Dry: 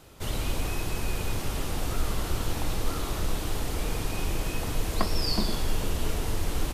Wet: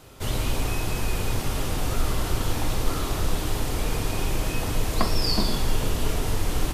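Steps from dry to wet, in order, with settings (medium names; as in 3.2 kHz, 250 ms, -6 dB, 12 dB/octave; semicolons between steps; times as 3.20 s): on a send: reverberation RT60 0.40 s, pre-delay 5 ms, DRR 6.5 dB; on the sum: trim +3 dB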